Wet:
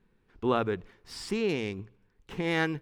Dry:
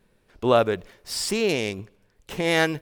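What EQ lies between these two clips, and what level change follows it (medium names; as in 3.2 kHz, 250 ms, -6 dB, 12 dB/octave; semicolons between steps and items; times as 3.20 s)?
low-pass 1.7 kHz 6 dB/octave; peaking EQ 600 Hz -12 dB 0.47 oct; hum notches 60/120 Hz; -3.0 dB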